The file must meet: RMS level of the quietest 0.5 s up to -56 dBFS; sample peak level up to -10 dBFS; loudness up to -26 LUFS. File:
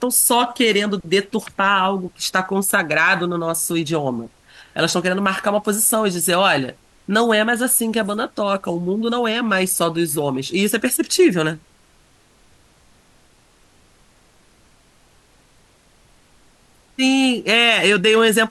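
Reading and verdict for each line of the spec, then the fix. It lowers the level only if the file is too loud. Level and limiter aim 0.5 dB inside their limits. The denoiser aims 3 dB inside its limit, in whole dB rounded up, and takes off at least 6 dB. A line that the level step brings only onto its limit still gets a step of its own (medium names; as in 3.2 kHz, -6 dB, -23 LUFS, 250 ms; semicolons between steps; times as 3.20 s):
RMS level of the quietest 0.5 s -54 dBFS: fail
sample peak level -5.0 dBFS: fail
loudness -17.5 LUFS: fail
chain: trim -9 dB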